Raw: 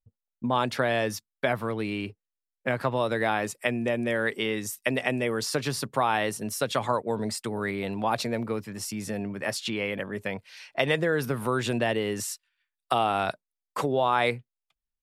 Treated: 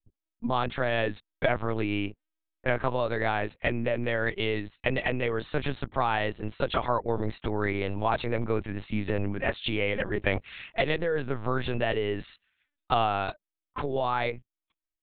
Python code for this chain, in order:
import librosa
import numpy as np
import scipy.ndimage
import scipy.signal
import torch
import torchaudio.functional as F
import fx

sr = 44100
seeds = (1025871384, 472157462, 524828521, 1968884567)

y = fx.rider(x, sr, range_db=10, speed_s=0.5)
y = fx.lpc_vocoder(y, sr, seeds[0], excitation='pitch_kept', order=8)